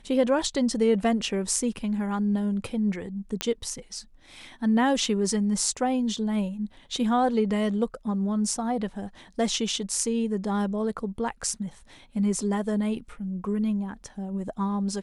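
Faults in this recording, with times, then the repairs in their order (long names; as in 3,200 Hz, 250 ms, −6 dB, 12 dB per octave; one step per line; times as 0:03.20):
0:03.41: click −9 dBFS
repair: click removal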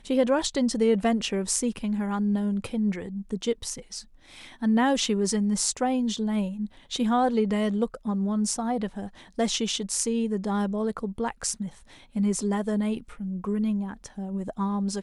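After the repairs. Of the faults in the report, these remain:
none of them is left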